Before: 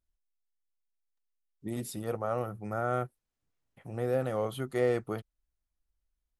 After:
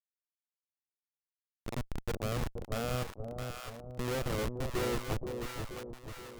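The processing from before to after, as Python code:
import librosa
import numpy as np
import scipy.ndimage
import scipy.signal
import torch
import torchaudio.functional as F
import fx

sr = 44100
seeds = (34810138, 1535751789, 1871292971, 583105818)

y = fx.schmitt(x, sr, flips_db=-31.0)
y = fx.echo_split(y, sr, split_hz=760.0, low_ms=477, high_ms=664, feedback_pct=52, wet_db=-5)
y = y * 10.0 ** (3.0 / 20.0)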